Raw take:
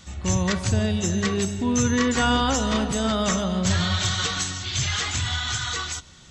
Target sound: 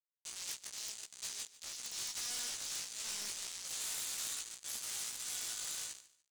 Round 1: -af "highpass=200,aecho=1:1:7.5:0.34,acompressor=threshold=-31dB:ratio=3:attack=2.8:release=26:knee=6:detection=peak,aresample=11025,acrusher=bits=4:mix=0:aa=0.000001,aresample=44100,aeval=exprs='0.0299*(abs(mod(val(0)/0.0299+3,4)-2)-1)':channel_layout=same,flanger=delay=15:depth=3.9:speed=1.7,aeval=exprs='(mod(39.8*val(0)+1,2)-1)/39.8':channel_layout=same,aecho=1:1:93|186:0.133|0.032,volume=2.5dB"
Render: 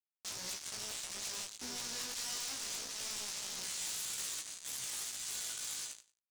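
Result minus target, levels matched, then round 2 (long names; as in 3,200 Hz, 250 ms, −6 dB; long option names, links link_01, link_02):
250 Hz band +7.5 dB; echo 53 ms early
-af "highpass=630,aecho=1:1:7.5:0.34,acompressor=threshold=-31dB:ratio=3:attack=2.8:release=26:knee=6:detection=peak,aresample=11025,acrusher=bits=4:mix=0:aa=0.000001,aresample=44100,aeval=exprs='0.0299*(abs(mod(val(0)/0.0299+3,4)-2)-1)':channel_layout=same,flanger=delay=15:depth=3.9:speed=1.7,aeval=exprs='(mod(39.8*val(0)+1,2)-1)/39.8':channel_layout=same,aecho=1:1:146|292:0.133|0.032,volume=2.5dB"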